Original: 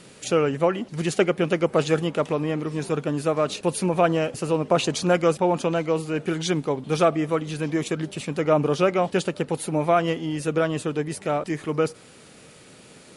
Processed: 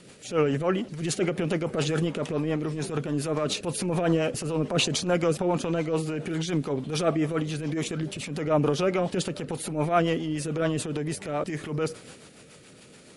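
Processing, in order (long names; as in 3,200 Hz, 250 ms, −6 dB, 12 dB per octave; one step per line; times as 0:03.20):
transient designer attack −10 dB, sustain +5 dB
rotating-speaker cabinet horn 7 Hz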